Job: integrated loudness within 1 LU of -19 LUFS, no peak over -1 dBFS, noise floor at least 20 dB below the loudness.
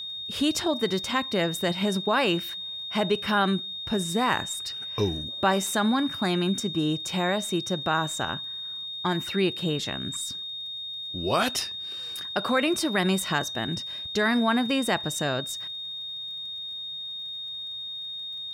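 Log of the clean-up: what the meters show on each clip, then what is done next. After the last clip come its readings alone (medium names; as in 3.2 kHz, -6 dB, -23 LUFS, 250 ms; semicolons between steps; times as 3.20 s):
tick rate 21 per s; steady tone 3.7 kHz; tone level -33 dBFS; loudness -27.0 LUFS; peak level -10.0 dBFS; loudness target -19.0 LUFS
-> de-click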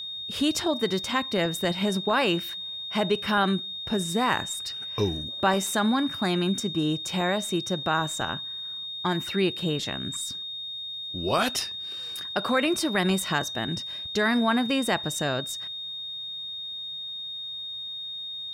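tick rate 0.16 per s; steady tone 3.7 kHz; tone level -33 dBFS
-> band-stop 3.7 kHz, Q 30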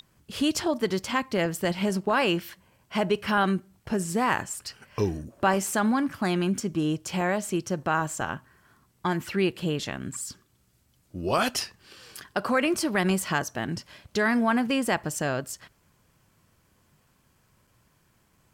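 steady tone not found; loudness -27.5 LUFS; peak level -10.0 dBFS; loudness target -19.0 LUFS
-> trim +8.5 dB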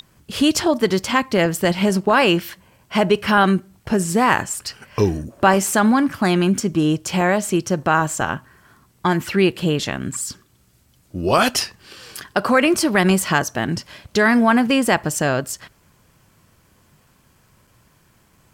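loudness -19.0 LUFS; peak level -1.5 dBFS; noise floor -58 dBFS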